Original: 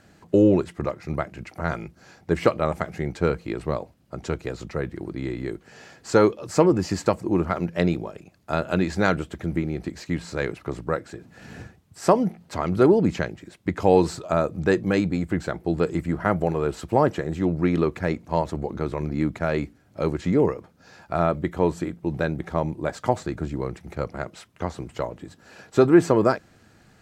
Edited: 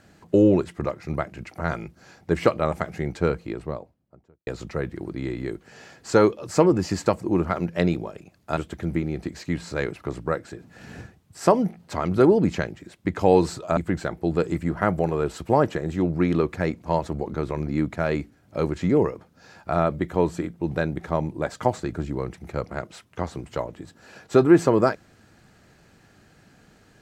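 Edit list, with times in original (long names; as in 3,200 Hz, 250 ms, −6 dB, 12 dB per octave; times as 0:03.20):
0:03.12–0:04.47: fade out and dull
0:08.57–0:09.18: remove
0:14.38–0:15.20: remove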